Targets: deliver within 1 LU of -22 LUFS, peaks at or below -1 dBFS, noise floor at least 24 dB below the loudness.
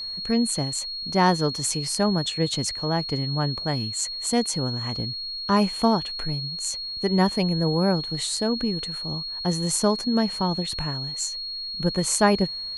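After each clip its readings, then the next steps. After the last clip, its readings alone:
steady tone 4300 Hz; tone level -30 dBFS; loudness -24.5 LUFS; peak -6.0 dBFS; loudness target -22.0 LUFS
-> notch 4300 Hz, Q 30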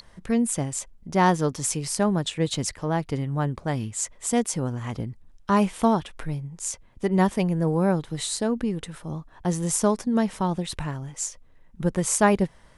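steady tone none; loudness -25.5 LUFS; peak -6.5 dBFS; loudness target -22.0 LUFS
-> gain +3.5 dB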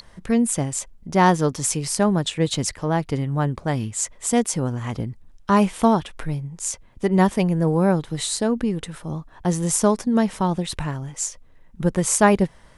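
loudness -22.0 LUFS; peak -3.0 dBFS; noise floor -50 dBFS

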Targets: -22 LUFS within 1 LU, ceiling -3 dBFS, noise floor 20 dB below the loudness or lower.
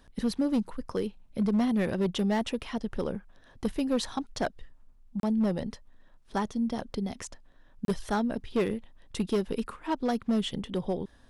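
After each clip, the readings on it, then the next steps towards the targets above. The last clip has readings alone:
clipped 1.2%; flat tops at -21.0 dBFS; dropouts 2; longest dropout 32 ms; loudness -31.0 LUFS; peak -21.0 dBFS; loudness target -22.0 LUFS
-> clip repair -21 dBFS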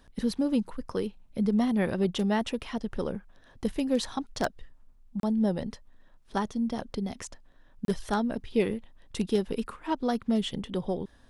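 clipped 0.0%; dropouts 2; longest dropout 32 ms
-> interpolate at 5.2/7.85, 32 ms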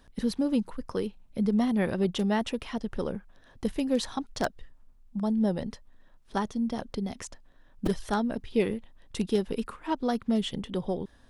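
dropouts 0; loudness -30.5 LUFS; peak -12.0 dBFS; loudness target -22.0 LUFS
-> gain +8.5 dB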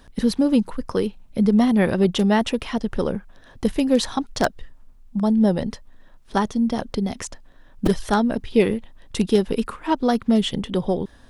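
loudness -22.0 LUFS; peak -3.5 dBFS; noise floor -49 dBFS

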